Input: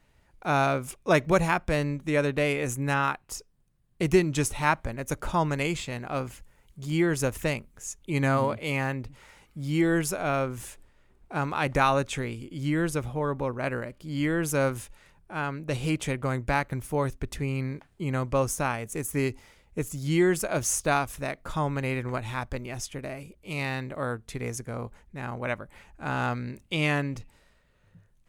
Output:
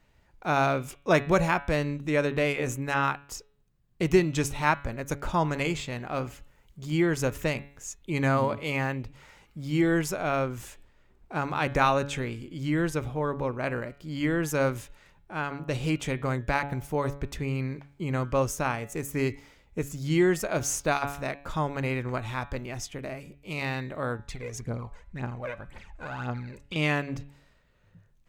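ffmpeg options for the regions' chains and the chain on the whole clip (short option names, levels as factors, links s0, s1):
-filter_complex "[0:a]asettb=1/sr,asplit=3[s0][s1][s2];[s0]atrim=end=24.194[s3];[s1]atrim=start=24.19:end=26.76,asetpts=PTS-STARTPTS,afade=t=in:d=0.004:c=qsin,afade=t=out:st=2.566:d=0.004:c=qsin,lowpass=10000,acompressor=threshold=0.02:ratio=4:attack=3.2:release=140:knee=1:detection=peak,aphaser=in_gain=1:out_gain=1:delay=2.1:decay=0.66:speed=1.9:type=triangular[s4];[s2]atrim=start=26.756[s5];[s3][s4]acrossfade=d=0.004:c1=hsin:c2=qsin[s6];[s6][s5]acrossfade=d=0.004:c1=qsin:c2=hsin,equalizer=f=10000:t=o:w=0.46:g=-8.5,bandreject=f=141.4:t=h:w=4,bandreject=f=282.8:t=h:w=4,bandreject=f=424.2:t=h:w=4,bandreject=f=565.6:t=h:w=4,bandreject=f=707:t=h:w=4,bandreject=f=848.4:t=h:w=4,bandreject=f=989.8:t=h:w=4,bandreject=f=1131.2:t=h:w=4,bandreject=f=1272.6:t=h:w=4,bandreject=f=1414:t=h:w=4,bandreject=f=1555.4:t=h:w=4,bandreject=f=1696.8:t=h:w=4,bandreject=f=1838.2:t=h:w=4,bandreject=f=1979.6:t=h:w=4,bandreject=f=2121:t=h:w=4,bandreject=f=2262.4:t=h:w=4,bandreject=f=2403.8:t=h:w=4,bandreject=f=2545.2:t=h:w=4,bandreject=f=2686.6:t=h:w=4,bandreject=f=2828:t=h:w=4,bandreject=f=2969.4:t=h:w=4,bandreject=f=3110.8:t=h:w=4,bandreject=f=3252.2:t=h:w=4,bandreject=f=3393.6:t=h:w=4,bandreject=f=3535:t=h:w=4,bandreject=f=3676.4:t=h:w=4,bandreject=f=3817.8:t=h:w=4,bandreject=f=3959.2:t=h:w=4,bandreject=f=4100.6:t=h:w=4"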